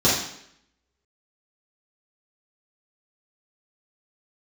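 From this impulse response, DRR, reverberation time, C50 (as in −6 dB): −9.5 dB, 0.70 s, 2.0 dB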